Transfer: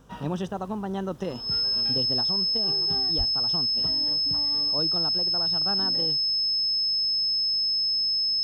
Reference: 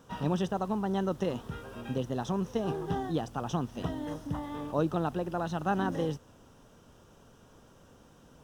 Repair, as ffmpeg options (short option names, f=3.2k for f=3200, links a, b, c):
-filter_complex "[0:a]bandreject=f=50.8:t=h:w=4,bandreject=f=101.6:t=h:w=4,bandreject=f=152.4:t=h:w=4,bandreject=f=203.2:t=h:w=4,bandreject=f=254:t=h:w=4,bandreject=f=5.2k:w=30,asplit=3[a][b][c];[a]afade=t=out:st=3.17:d=0.02[d];[b]highpass=f=140:w=0.5412,highpass=f=140:w=1.3066,afade=t=in:st=3.17:d=0.02,afade=t=out:st=3.29:d=0.02[e];[c]afade=t=in:st=3.29:d=0.02[f];[d][e][f]amix=inputs=3:normalize=0,asetnsamples=n=441:p=0,asendcmd='2.21 volume volume 4.5dB',volume=0dB"